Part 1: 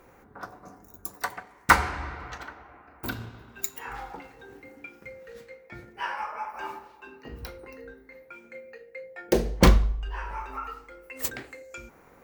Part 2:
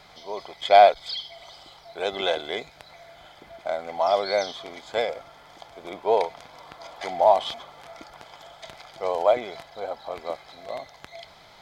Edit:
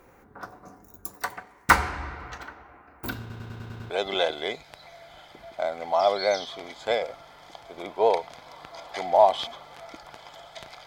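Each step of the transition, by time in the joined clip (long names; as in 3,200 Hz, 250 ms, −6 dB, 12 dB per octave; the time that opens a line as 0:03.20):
part 1
0:03.20: stutter in place 0.10 s, 7 plays
0:03.90: continue with part 2 from 0:01.97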